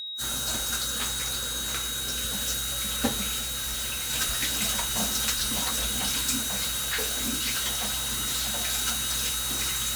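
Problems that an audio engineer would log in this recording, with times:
tone 3800 Hz -33 dBFS
3.39–4.11 clipped -28 dBFS
6.4–8.55 clipped -24 dBFS

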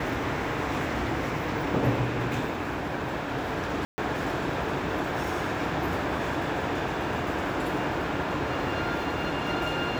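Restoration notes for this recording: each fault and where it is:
3.85–3.98 gap 0.13 s

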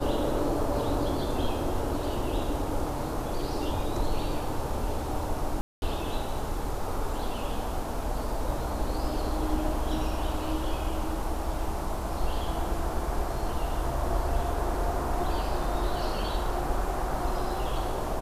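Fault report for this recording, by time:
5.61–5.82 gap 0.211 s

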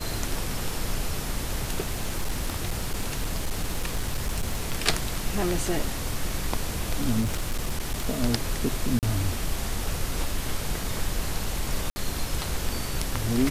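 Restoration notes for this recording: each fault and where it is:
1.87–4.73 clipped -22 dBFS
7.2–8.07 clipped -22.5 dBFS
8.99–9.03 gap 38 ms
11.9–11.96 gap 60 ms

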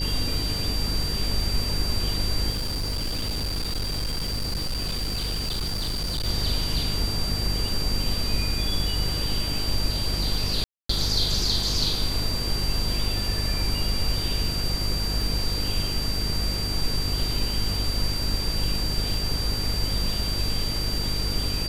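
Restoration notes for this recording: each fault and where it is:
buzz 50 Hz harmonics 10 -30 dBFS
crackle 18/s -29 dBFS
tone 4700 Hz -29 dBFS
2.5–6.26 clipped -24 dBFS
10.64–10.89 gap 0.254 s

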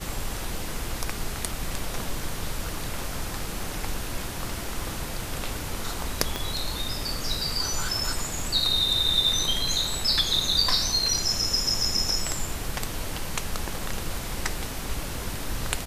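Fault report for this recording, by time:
6.36 pop -12 dBFS

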